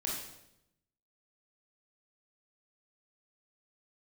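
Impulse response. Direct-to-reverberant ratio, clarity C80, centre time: -4.0 dB, 5.0 dB, 55 ms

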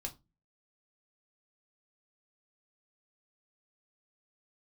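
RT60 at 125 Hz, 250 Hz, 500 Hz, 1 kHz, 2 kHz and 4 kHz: 0.45, 0.45, 0.25, 0.25, 0.20, 0.20 s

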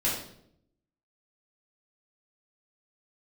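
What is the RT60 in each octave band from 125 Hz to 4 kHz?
1.0, 0.95, 0.80, 0.60, 0.55, 0.55 s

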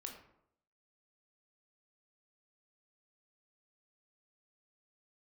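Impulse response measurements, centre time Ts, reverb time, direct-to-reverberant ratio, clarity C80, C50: 26 ms, 0.75 s, 1.5 dB, 9.0 dB, 6.5 dB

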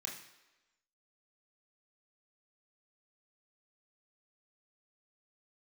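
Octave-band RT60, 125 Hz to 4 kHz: 0.60, 0.95, 1.1, 1.1, 1.1, 1.0 s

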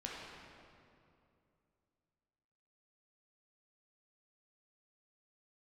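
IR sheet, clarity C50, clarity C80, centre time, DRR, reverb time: -1.5 dB, 0.5 dB, 0.133 s, -4.5 dB, 2.6 s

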